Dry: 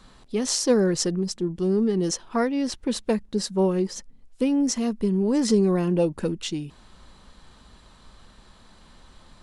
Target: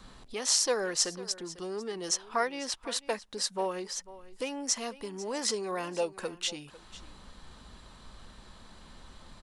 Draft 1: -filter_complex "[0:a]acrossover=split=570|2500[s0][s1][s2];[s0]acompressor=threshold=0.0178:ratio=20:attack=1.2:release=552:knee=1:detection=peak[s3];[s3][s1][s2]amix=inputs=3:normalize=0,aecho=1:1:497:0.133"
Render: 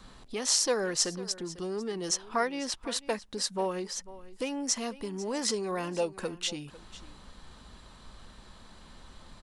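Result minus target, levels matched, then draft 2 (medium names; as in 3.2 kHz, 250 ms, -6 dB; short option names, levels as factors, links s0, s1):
compression: peak gain reduction -6.5 dB
-filter_complex "[0:a]acrossover=split=570|2500[s0][s1][s2];[s0]acompressor=threshold=0.00794:ratio=20:attack=1.2:release=552:knee=1:detection=peak[s3];[s3][s1][s2]amix=inputs=3:normalize=0,aecho=1:1:497:0.133"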